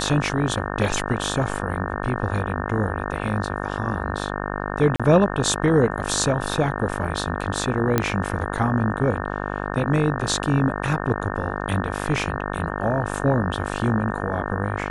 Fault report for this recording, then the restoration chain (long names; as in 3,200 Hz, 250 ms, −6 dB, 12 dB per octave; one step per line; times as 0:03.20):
mains buzz 50 Hz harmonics 36 −28 dBFS
0:04.96–0:05.00: drop-out 36 ms
0:07.98: click −5 dBFS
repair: click removal
hum removal 50 Hz, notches 36
repair the gap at 0:04.96, 36 ms